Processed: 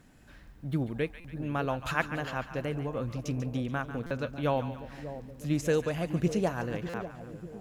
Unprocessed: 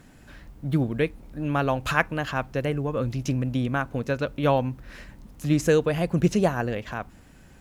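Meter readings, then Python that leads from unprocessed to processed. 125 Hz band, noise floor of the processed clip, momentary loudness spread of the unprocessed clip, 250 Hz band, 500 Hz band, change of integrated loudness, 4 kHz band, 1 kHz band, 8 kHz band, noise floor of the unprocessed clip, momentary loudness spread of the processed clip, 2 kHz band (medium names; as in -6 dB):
-6.5 dB, -53 dBFS, 13 LU, -6.5 dB, -6.5 dB, -7.0 dB, -6.5 dB, -6.5 dB, -6.5 dB, -51 dBFS, 12 LU, -6.5 dB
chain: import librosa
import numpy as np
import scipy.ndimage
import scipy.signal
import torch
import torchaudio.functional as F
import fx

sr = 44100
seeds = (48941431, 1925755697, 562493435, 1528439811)

y = fx.echo_split(x, sr, split_hz=740.0, low_ms=595, high_ms=143, feedback_pct=52, wet_db=-11.0)
y = fx.buffer_glitch(y, sr, at_s=(1.2, 4.06, 6.89), block=256, repeats=7)
y = y * librosa.db_to_amplitude(-7.0)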